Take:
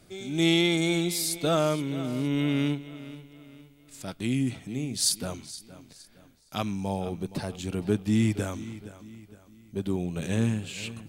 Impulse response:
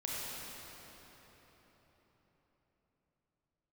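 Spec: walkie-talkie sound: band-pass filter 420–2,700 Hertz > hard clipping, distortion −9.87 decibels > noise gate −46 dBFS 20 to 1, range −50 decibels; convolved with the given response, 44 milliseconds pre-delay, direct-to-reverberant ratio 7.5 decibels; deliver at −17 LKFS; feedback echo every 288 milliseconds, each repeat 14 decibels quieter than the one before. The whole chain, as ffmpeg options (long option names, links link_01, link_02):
-filter_complex "[0:a]aecho=1:1:288|576:0.2|0.0399,asplit=2[link_01][link_02];[1:a]atrim=start_sample=2205,adelay=44[link_03];[link_02][link_03]afir=irnorm=-1:irlink=0,volume=-11dB[link_04];[link_01][link_04]amix=inputs=2:normalize=0,highpass=420,lowpass=2700,asoftclip=type=hard:threshold=-27.5dB,agate=range=-50dB:threshold=-46dB:ratio=20,volume=18.5dB"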